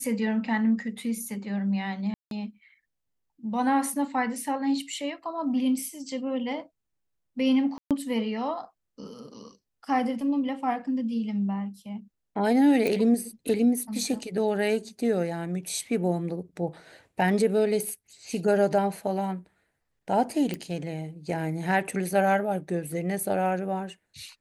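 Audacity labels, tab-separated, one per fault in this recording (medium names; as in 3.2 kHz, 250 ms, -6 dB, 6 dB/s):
2.140000	2.310000	dropout 172 ms
7.780000	7.910000	dropout 127 ms
12.870000	12.870000	pop
20.540000	20.540000	pop -18 dBFS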